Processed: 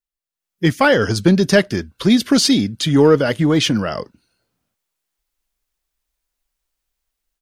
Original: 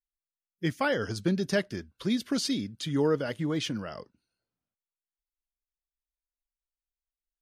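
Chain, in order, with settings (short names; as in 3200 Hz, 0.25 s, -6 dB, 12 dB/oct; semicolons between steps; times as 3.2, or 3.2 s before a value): AGC gain up to 14 dB; in parallel at -9 dB: soft clip -15.5 dBFS, distortion -10 dB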